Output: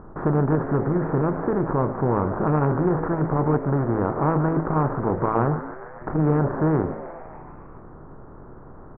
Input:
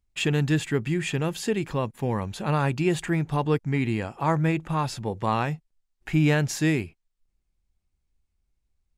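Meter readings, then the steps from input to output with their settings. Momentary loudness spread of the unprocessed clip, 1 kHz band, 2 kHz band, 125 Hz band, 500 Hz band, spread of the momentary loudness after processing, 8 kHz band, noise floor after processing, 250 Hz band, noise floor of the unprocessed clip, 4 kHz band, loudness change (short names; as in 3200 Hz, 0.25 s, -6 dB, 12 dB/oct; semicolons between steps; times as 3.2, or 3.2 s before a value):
6 LU, +4.5 dB, -5.0 dB, +2.5 dB, +5.0 dB, 9 LU, under -40 dB, -43 dBFS, +3.5 dB, -77 dBFS, under -35 dB, +3.0 dB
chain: per-bin compression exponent 0.4; elliptic low-pass 1400 Hz, stop band 50 dB; low shelf 74 Hz +9 dB; de-hum 54.76 Hz, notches 16; frequency-shifting echo 0.143 s, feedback 63%, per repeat +120 Hz, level -14.5 dB; core saturation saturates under 300 Hz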